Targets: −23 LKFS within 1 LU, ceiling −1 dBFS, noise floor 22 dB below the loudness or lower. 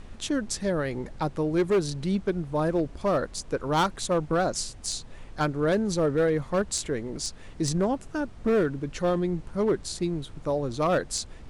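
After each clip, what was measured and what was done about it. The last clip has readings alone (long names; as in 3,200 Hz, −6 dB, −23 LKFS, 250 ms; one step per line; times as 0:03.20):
share of clipped samples 1.4%; peaks flattened at −18.0 dBFS; background noise floor −45 dBFS; target noise floor −50 dBFS; integrated loudness −27.5 LKFS; sample peak −18.0 dBFS; target loudness −23.0 LKFS
→ clipped peaks rebuilt −18 dBFS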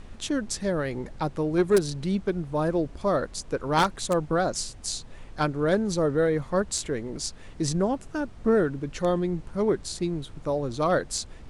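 share of clipped samples 0.0%; background noise floor −45 dBFS; target noise floor −49 dBFS
→ noise reduction from a noise print 6 dB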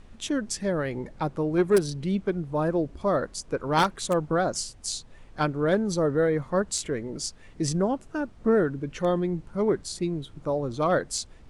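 background noise floor −50 dBFS; integrated loudness −27.0 LKFS; sample peak −9.0 dBFS; target loudness −23.0 LKFS
→ level +4 dB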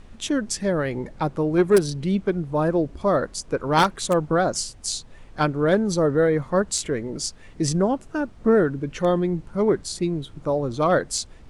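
integrated loudness −23.0 LKFS; sample peak −5.0 dBFS; background noise floor −46 dBFS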